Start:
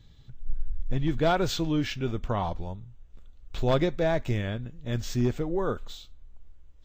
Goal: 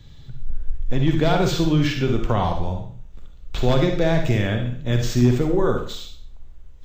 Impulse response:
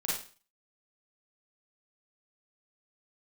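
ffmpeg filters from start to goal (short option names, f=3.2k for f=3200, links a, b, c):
-filter_complex "[0:a]acrossover=split=230|2200[a][b][c];[a]acompressor=threshold=-26dB:ratio=4[d];[b]acompressor=threshold=-29dB:ratio=4[e];[c]acompressor=threshold=-40dB:ratio=4[f];[d][e][f]amix=inputs=3:normalize=0,asplit=2[g][h];[1:a]atrim=start_sample=2205,asetrate=34839,aresample=44100[i];[h][i]afir=irnorm=-1:irlink=0,volume=-7.5dB[j];[g][j]amix=inputs=2:normalize=0,volume=6dB"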